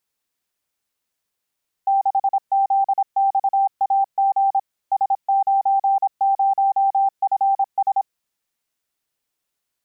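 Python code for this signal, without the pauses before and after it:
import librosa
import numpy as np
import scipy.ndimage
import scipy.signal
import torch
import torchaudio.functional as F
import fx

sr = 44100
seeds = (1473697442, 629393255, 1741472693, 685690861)

y = fx.morse(sr, text='6ZXAG S90FS', wpm=26, hz=785.0, level_db=-14.0)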